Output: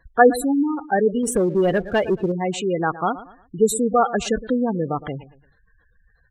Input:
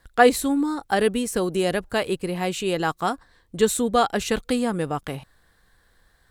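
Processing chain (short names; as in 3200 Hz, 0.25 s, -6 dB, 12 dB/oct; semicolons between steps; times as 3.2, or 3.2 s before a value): on a send: feedback echo 0.114 s, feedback 34%, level -16 dB; on the sum: spectral gate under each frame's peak -15 dB strong; 1.23–2.32 sample leveller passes 1; gain +2.5 dB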